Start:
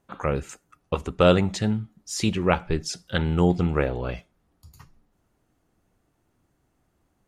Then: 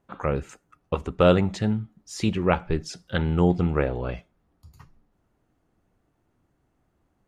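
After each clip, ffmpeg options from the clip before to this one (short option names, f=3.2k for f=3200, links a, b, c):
-af "highshelf=f=3.8k:g=-9"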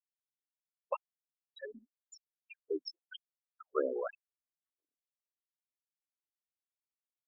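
-filter_complex "[0:a]acrossover=split=1200|3600[a][b][c];[a]acompressor=threshold=-32dB:ratio=4[d];[b]acompressor=threshold=-43dB:ratio=4[e];[c]acompressor=threshold=-43dB:ratio=4[f];[d][e][f]amix=inputs=3:normalize=0,afftfilt=real='re*gte(hypot(re,im),0.0447)':imag='im*gte(hypot(re,im),0.0447)':win_size=1024:overlap=0.75,afftfilt=real='re*gte(b*sr/1024,240*pow(5500/240,0.5+0.5*sin(2*PI*0.96*pts/sr)))':imag='im*gte(b*sr/1024,240*pow(5500/240,0.5+0.5*sin(2*PI*0.96*pts/sr)))':win_size=1024:overlap=0.75,volume=4.5dB"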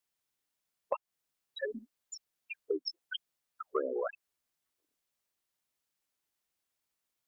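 -af "acompressor=threshold=-41dB:ratio=6,volume=10.5dB"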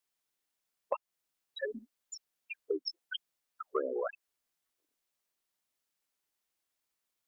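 -af "equalizer=f=100:t=o:w=1.4:g=-5.5"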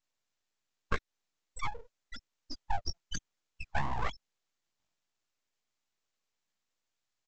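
-af "flanger=delay=17:depth=3:speed=1.4,aresample=16000,aeval=exprs='abs(val(0))':c=same,aresample=44100,volume=7.5dB"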